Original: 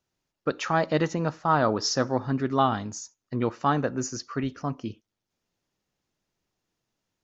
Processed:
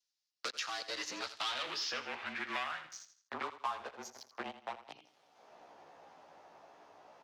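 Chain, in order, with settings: short-time spectra conjugated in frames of 30 ms; Doppler pass-by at 1.68 s, 10 m/s, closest 3.3 m; bass shelf 240 Hz -8.5 dB; waveshaping leveller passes 5; reverse; upward compressor, threshold -42 dBFS; reverse; frequency shift -31 Hz; band-pass sweep 4.8 kHz -> 760 Hz, 1.12–4.02 s; on a send: feedback delay 82 ms, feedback 28%, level -14 dB; on the sum: three bands compressed up and down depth 100%; trim -3 dB

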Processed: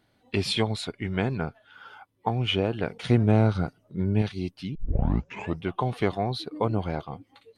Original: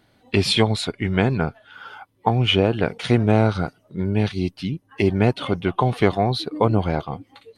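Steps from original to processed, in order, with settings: 2.94–4.22 s: bass shelf 330 Hz +6.5 dB; 4.75 s: tape start 0.89 s; trim -7.5 dB

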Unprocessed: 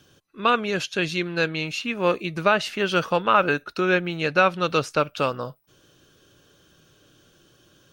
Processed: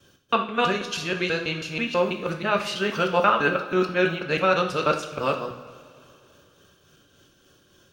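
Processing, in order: time reversed locally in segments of 162 ms; tremolo triangle 3.5 Hz, depth 50%; two-slope reverb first 0.49 s, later 2.8 s, from -16 dB, DRR 3 dB

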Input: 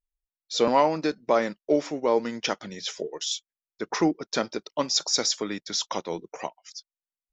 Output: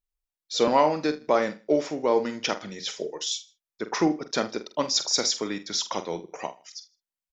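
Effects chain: doubling 46 ms -11 dB; on a send: feedback delay 79 ms, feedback 31%, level -20.5 dB

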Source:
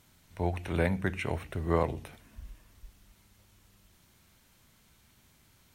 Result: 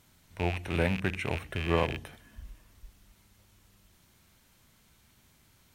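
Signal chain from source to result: rattle on loud lows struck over -35 dBFS, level -24 dBFS; 1.47–2.42 s: small resonant body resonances 1.7/3.1 kHz, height 12 dB

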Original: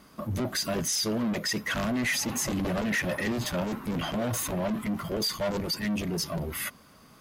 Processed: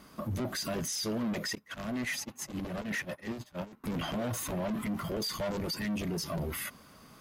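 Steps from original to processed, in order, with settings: 1.55–3.84 s: gate -27 dBFS, range -28 dB; peak limiter -28 dBFS, peak gain reduction 7.5 dB

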